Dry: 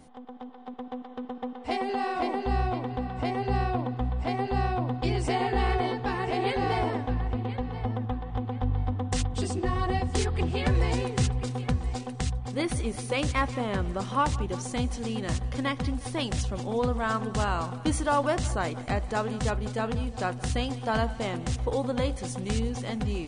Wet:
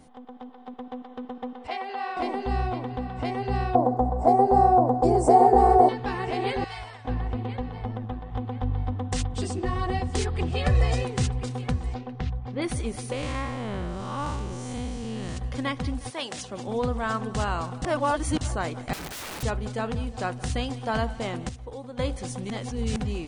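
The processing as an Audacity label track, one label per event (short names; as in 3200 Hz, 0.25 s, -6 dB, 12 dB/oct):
1.670000	2.170000	three-band isolator lows -17 dB, under 510 Hz, highs -15 dB, over 4700 Hz
3.750000	5.890000	EQ curve 130 Hz 0 dB, 700 Hz +15 dB, 2900 Hz -20 dB, 7600 Hz +7 dB
6.640000	7.050000	passive tone stack bass-middle-treble 10-0-10
7.690000	8.310000	AM modulator 100 Hz, depth 30%
10.520000	11.050000	comb 1.6 ms, depth 66%
11.940000	12.620000	air absorption 270 m
13.120000	15.370000	time blur width 0.194 s
16.090000	16.660000	HPF 600 Hz -> 150 Hz
17.820000	18.410000	reverse
18.930000	19.430000	wrapped overs gain 32 dB
21.490000	21.990000	gain -10.5 dB
22.500000	22.960000	reverse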